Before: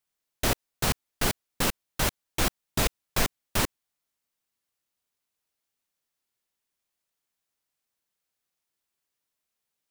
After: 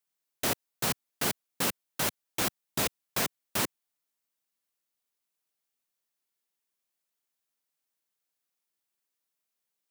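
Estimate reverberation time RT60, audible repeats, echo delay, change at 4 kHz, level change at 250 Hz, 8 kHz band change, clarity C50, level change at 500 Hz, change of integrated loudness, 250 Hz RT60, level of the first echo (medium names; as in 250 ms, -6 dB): no reverb, no echo, no echo, -3.0 dB, -4.0 dB, -1.5 dB, no reverb, -3.5 dB, -2.5 dB, no reverb, no echo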